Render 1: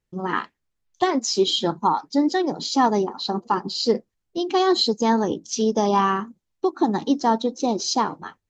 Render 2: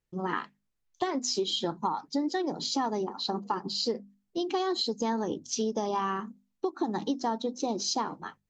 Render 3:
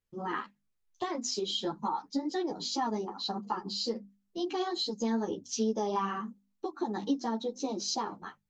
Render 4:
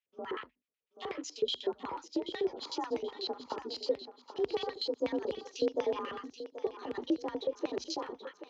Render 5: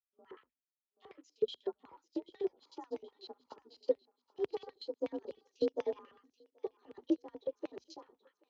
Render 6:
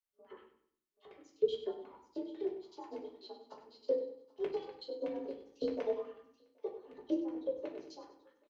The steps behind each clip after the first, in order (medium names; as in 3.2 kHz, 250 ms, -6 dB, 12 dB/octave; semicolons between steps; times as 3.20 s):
hum notches 50/100/150/200/250 Hz; compression, threshold -22 dBFS, peak gain reduction 8.5 dB; trim -4 dB
three-phase chorus
LFO band-pass square 8.1 Hz 410–2600 Hz; frequency shift +45 Hz; thinning echo 781 ms, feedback 39%, high-pass 340 Hz, level -11 dB; trim +5.5 dB
upward expansion 2.5:1, over -42 dBFS; trim +1 dB
feedback delay 97 ms, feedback 35%, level -11.5 dB; reverberation RT60 0.45 s, pre-delay 3 ms, DRR -2 dB; trim -5.5 dB